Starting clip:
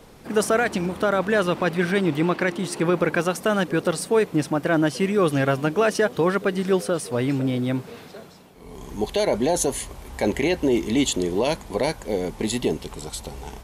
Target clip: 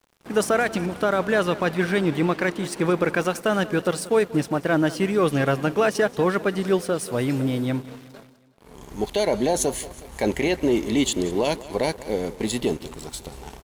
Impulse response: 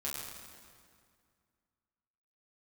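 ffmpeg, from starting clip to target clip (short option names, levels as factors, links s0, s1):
-filter_complex "[0:a]asettb=1/sr,asplit=3[s0][s1][s2];[s0]atrim=end=7.014[s3];[s1]atrim=start=7.01:end=7.66,asetpts=PTS-STARTPTS,afade=t=in:d=0.004:c=qsin,afade=t=out:st=0.646:d=0.004:c=qsin,highshelf=f=8400:g=7.5[s4];[s2]atrim=start=7.656[s5];[s3][s4]acrossfade=d=0.004:c1=hsin:c2=qsin[s6];[s6][s5]acrossfade=d=0.004:c1=qsin:c2=hsin,aeval=exprs='sgn(val(0))*max(abs(val(0))-0.0075,0)':c=same,aecho=1:1:184|368|552|736:0.126|0.0667|0.0354|0.0187"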